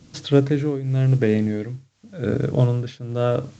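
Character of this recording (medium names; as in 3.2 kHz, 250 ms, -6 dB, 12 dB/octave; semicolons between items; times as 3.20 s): a quantiser's noise floor 10-bit, dither triangular; tremolo triangle 0.92 Hz, depth 90%; µ-law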